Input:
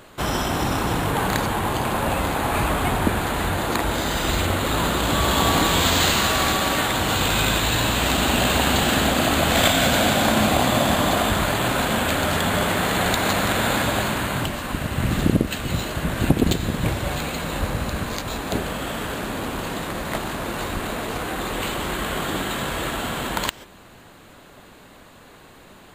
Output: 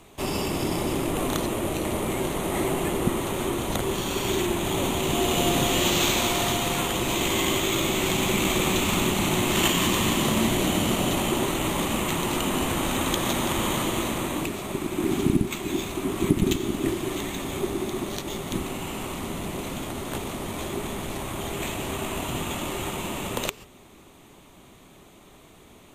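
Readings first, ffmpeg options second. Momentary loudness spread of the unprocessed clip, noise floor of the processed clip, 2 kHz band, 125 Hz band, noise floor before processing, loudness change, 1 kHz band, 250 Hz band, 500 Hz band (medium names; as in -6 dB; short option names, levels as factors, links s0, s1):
10 LU, -51 dBFS, -7.0 dB, -5.5 dB, -47 dBFS, -4.0 dB, -7.0 dB, -1.5 dB, -2.5 dB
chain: -af "equalizer=f=630:t=o:w=0.33:g=-11,equalizer=f=2000:t=o:w=0.33:g=-7,equalizer=f=10000:t=o:w=0.33:g=4,afreqshift=-440,volume=0.708"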